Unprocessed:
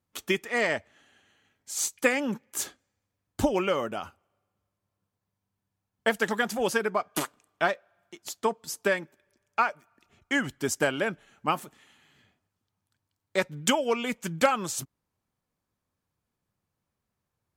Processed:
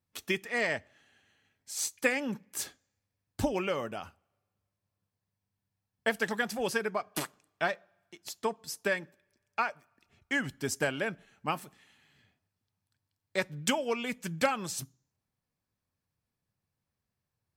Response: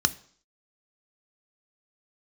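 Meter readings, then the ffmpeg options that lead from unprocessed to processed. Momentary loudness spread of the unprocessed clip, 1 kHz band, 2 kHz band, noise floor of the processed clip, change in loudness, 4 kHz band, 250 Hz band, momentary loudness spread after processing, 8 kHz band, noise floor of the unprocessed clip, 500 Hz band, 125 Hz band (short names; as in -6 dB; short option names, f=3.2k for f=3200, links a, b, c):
10 LU, -6.0 dB, -3.5 dB, under -85 dBFS, -4.5 dB, -4.0 dB, -4.5 dB, 10 LU, -4.5 dB, -84 dBFS, -5.0 dB, -2.5 dB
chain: -filter_complex "[0:a]asplit=2[a][b];[1:a]atrim=start_sample=2205[c];[b][c]afir=irnorm=-1:irlink=0,volume=-22.5dB[d];[a][d]amix=inputs=2:normalize=0,volume=-3.5dB"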